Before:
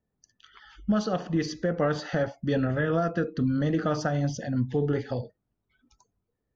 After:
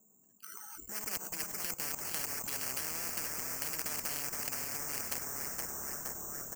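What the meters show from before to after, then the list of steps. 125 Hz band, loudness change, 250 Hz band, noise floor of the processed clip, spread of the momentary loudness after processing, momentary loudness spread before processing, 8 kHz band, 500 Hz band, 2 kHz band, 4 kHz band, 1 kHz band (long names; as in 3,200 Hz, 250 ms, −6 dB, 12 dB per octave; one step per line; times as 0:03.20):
−25.0 dB, −8.0 dB, −24.0 dB, −66 dBFS, 5 LU, 4 LU, can't be measured, −21.0 dB, −6.5 dB, −0.5 dB, −10.5 dB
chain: adaptive Wiener filter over 25 samples
loudspeaker in its box 200–2,600 Hz, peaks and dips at 210 Hz +9 dB, 550 Hz −5 dB, 1,700 Hz +6 dB
treble cut that deepens with the level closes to 1,700 Hz, closed at −23 dBFS
gain on a spectral selection 0:00.85–0:01.92, 530–1,400 Hz −10 dB
low-shelf EQ 320 Hz −10 dB
output level in coarse steps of 20 dB
repeating echo 476 ms, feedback 37%, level −13.5 dB
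treble cut that deepens with the level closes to 560 Hz, closed at −30 dBFS
bad sample-rate conversion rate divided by 6×, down filtered, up zero stuff
echo with shifted repeats 468 ms, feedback 46%, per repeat −35 Hz, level −10 dB
every bin compressed towards the loudest bin 10 to 1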